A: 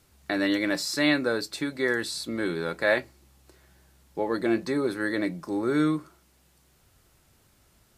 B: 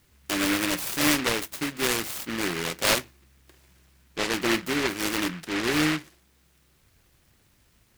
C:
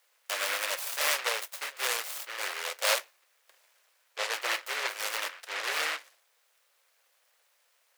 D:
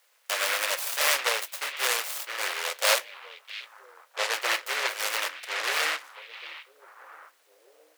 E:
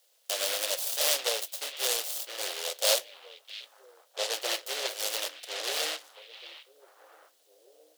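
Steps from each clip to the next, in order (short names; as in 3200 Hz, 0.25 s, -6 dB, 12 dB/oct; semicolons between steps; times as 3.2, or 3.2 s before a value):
noise-modulated delay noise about 1800 Hz, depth 0.33 ms
elliptic high-pass 510 Hz, stop band 60 dB; gain -3 dB
notches 60/120/180/240/300 Hz; delay with a stepping band-pass 0.661 s, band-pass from 2800 Hz, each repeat -1.4 oct, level -12 dB; gain +4 dB
band shelf 1500 Hz -11.5 dB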